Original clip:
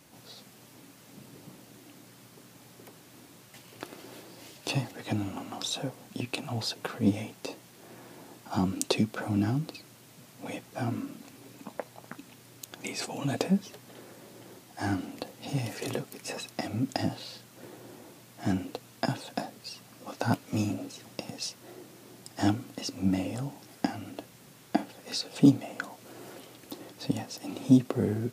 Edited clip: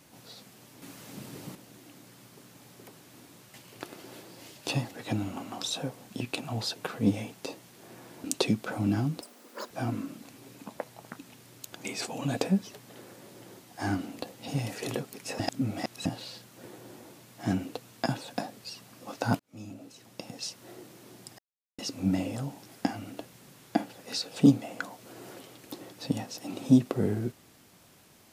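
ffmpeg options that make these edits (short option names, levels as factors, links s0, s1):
-filter_complex "[0:a]asplit=11[s0][s1][s2][s3][s4][s5][s6][s7][s8][s9][s10];[s0]atrim=end=0.822[s11];[s1]atrim=start=0.818:end=1.552,asetpts=PTS-STARTPTS,volume=2.11[s12];[s2]atrim=start=1.548:end=8.242[s13];[s3]atrim=start=8.738:end=9.714[s14];[s4]atrim=start=9.71:end=10.7,asetpts=PTS-STARTPTS,asetrate=88200,aresample=44100[s15];[s5]atrim=start=10.696:end=16.392[s16];[s6]atrim=start=16.388:end=17.052,asetpts=PTS-STARTPTS,areverse[s17];[s7]atrim=start=17.048:end=20.39,asetpts=PTS-STARTPTS,afade=t=out:st=3.338:d=0.004:c=hsin[s18];[s8]atrim=start=20.39:end=22.38,asetpts=PTS-STARTPTS,afade=t=in:d=1.24,afade=t=out:st=1.986:d=0.004:c=hsin[s19];[s9]atrim=start=22.38:end=22.78,asetpts=PTS-STARTPTS,volume=0[s20];[s10]atrim=start=22.78,asetpts=PTS-STARTPTS,afade=t=in:d=0.004:c=hsin[s21];[s11][s12]acrossfade=d=0.004:c1=hsin:c2=hsin[s22];[s22][s13]acrossfade=d=0.004:c1=hsin:c2=hsin[s23];[s23][s14]acrossfade=d=0.004:c1=hsin:c2=hsin[s24];[s24][s15]acrossfade=d=0.004:c1=hsin:c2=hsin[s25];[s25][s16]acrossfade=d=0.004:c1=hsin:c2=hsin[s26];[s26][s17]acrossfade=d=0.004:c1=hsin:c2=hsin[s27];[s18][s19][s20][s21]concat=n=4:v=0:a=1[s28];[s27][s28]acrossfade=d=0.004:c1=hsin:c2=hsin"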